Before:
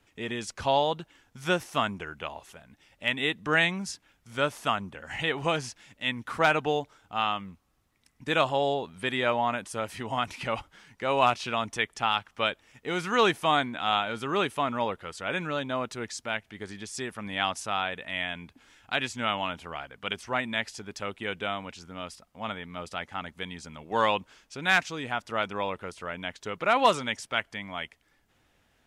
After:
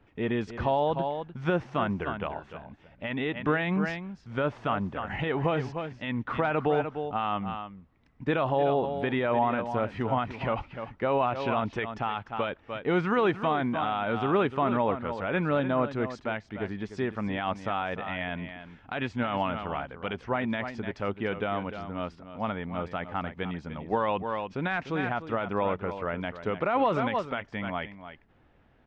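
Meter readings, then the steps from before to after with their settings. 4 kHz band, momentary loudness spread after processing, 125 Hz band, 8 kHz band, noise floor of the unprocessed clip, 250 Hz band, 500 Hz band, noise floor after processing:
-10.0 dB, 10 LU, +5.5 dB, under -20 dB, -69 dBFS, +5.0 dB, +2.0 dB, -60 dBFS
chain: echo 0.298 s -12 dB; limiter -20 dBFS, peak gain reduction 10 dB; tape spacing loss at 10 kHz 43 dB; gain +8 dB

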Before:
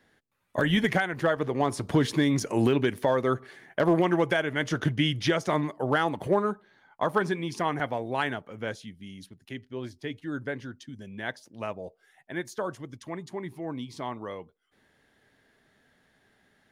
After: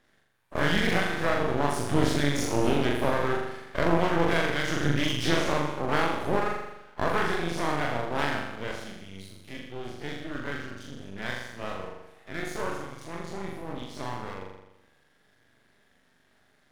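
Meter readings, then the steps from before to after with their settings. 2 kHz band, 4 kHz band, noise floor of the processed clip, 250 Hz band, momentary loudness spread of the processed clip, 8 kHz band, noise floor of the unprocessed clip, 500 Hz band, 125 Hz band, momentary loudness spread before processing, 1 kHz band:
+1.5 dB, +1.5 dB, -65 dBFS, -2.0 dB, 16 LU, +3.5 dB, -68 dBFS, -1.0 dB, -0.5 dB, 17 LU, +1.0 dB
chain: spectral dilation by 60 ms; flutter echo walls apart 7.1 m, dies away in 0.94 s; half-wave rectifier; gain -3 dB

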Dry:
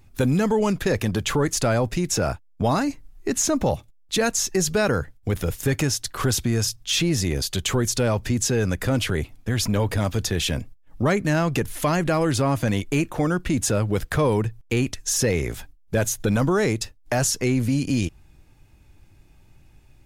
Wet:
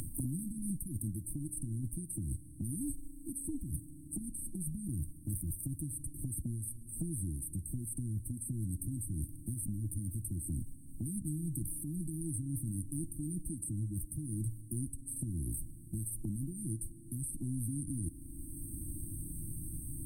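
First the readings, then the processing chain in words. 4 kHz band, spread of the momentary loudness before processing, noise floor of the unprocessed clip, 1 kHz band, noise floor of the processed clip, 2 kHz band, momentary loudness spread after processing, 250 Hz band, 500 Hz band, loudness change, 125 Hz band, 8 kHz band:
under -40 dB, 6 LU, -54 dBFS, under -40 dB, -51 dBFS, under -40 dB, 5 LU, -16.0 dB, -33.0 dB, -16.0 dB, -13.0 dB, -13.5 dB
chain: ten-band EQ 125 Hz -4 dB, 250 Hz -7 dB, 8000 Hz +10 dB; reverse; compressor 10:1, threshold -33 dBFS, peak gain reduction 21.5 dB; reverse; brick-wall FIR band-stop 340–8200 Hz; FDN reverb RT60 2.1 s, low-frequency decay 1×, high-frequency decay 0.75×, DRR 16.5 dB; three-band squash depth 100%; gain +1.5 dB

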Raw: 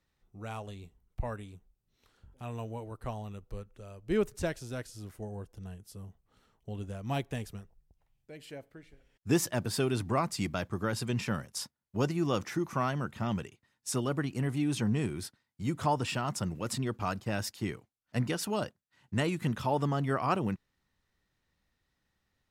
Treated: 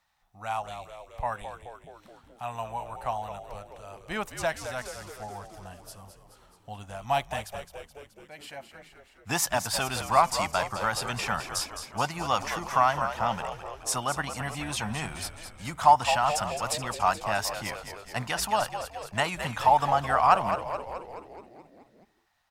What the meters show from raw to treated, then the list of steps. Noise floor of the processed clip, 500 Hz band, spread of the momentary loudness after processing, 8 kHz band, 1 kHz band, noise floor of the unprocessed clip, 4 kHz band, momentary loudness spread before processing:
-60 dBFS, +3.0 dB, 21 LU, +7.5 dB, +12.5 dB, -80 dBFS, +7.5 dB, 16 LU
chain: resonant low shelf 560 Hz -11 dB, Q 3; frequency-shifting echo 0.213 s, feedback 61%, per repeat -67 Hz, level -9.5 dB; gain +6.5 dB

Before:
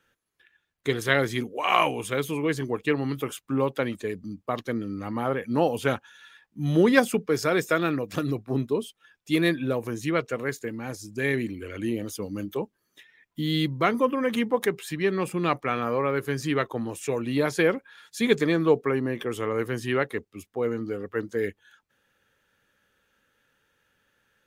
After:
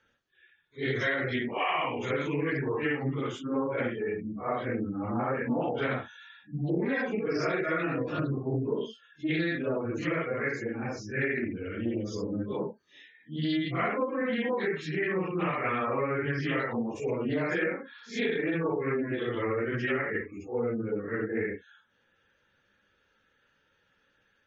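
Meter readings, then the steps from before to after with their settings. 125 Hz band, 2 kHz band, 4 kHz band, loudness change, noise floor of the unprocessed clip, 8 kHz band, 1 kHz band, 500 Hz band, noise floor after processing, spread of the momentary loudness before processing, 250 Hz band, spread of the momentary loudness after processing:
-3.5 dB, -2.0 dB, -7.0 dB, -4.0 dB, -76 dBFS, under -10 dB, -4.5 dB, -4.5 dB, -71 dBFS, 11 LU, -4.0 dB, 6 LU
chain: phase scrambler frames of 0.2 s; steep low-pass 6500 Hz 36 dB/oct; dynamic EQ 1900 Hz, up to +6 dB, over -44 dBFS, Q 3.3; compressor 16:1, threshold -25 dBFS, peak gain reduction 11 dB; spectral gate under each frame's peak -25 dB strong; Doppler distortion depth 0.15 ms

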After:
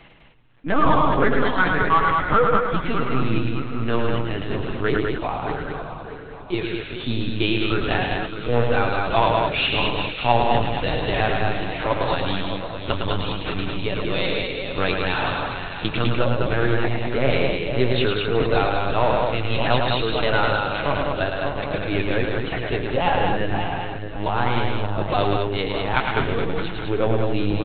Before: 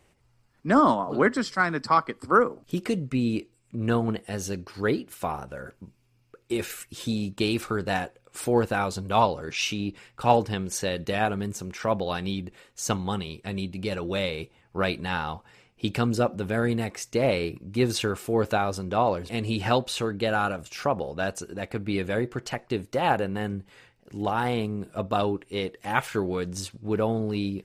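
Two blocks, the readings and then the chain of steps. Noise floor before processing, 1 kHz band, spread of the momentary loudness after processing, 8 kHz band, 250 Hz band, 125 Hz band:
-64 dBFS, +5.0 dB, 8 LU, under -35 dB, +2.0 dB, +6.0 dB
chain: regenerating reverse delay 0.307 s, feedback 61%, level -8 dB; in parallel at -4 dB: hard clip -21 dBFS, distortion -10 dB; on the sum: LPC vocoder at 8 kHz pitch kept; high shelf 2800 Hz +9.5 dB; reverse; upward compressor, threshold -35 dBFS; reverse; flange 1.2 Hz, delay 6 ms, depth 1.6 ms, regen -42%; loudspeakers at several distances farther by 37 m -5 dB, 70 m -4 dB; gain +2 dB

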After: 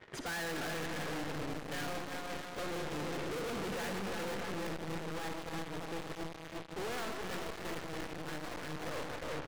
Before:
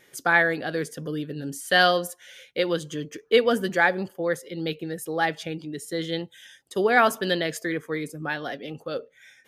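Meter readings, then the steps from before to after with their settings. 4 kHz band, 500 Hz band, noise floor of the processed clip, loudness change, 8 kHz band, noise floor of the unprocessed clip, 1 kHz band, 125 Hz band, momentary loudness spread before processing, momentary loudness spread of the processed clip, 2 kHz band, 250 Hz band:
-13.5 dB, -15.0 dB, -47 dBFS, -14.5 dB, -8.5 dB, -60 dBFS, -14.5 dB, -8.5 dB, 15 LU, 5 LU, -17.0 dB, -11.5 dB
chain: compressor 2:1, threshold -33 dBFS, peak gain reduction 11 dB; sample leveller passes 5; LPF 2000 Hz 12 dB/oct; bouncing-ball echo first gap 0.35 s, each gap 0.8×, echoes 5; digital reverb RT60 2 s, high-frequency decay 0.85×, pre-delay 15 ms, DRR 2.5 dB; tube stage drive 32 dB, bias 0.8; hard clip -39.5 dBFS, distortion -5 dB; gain +2 dB

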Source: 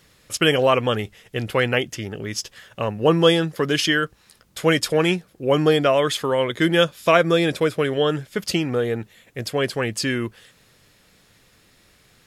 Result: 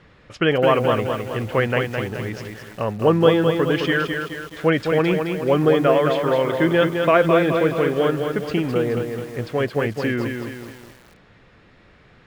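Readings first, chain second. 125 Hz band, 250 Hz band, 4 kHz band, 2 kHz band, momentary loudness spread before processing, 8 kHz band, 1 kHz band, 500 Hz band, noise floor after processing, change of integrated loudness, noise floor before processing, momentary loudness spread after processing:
+2.0 dB, +2.0 dB, -6.5 dB, -0.5 dB, 13 LU, under -10 dB, +1.5 dB, +2.0 dB, -52 dBFS, +1.0 dB, -57 dBFS, 12 LU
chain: G.711 law mismatch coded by mu; LPF 2100 Hz 12 dB/oct; lo-fi delay 0.212 s, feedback 55%, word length 7-bit, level -5 dB

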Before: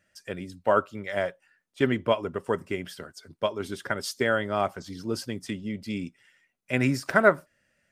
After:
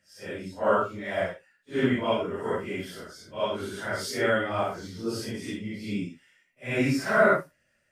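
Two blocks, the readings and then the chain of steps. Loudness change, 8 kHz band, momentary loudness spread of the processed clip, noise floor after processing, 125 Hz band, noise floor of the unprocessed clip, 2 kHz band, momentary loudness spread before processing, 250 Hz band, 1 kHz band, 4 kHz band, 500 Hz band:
0.0 dB, 0.0 dB, 15 LU, -71 dBFS, -1.0 dB, -73 dBFS, 0.0 dB, 14 LU, +0.5 dB, 0.0 dB, 0.0 dB, 0.0 dB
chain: phase scrambler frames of 0.2 s

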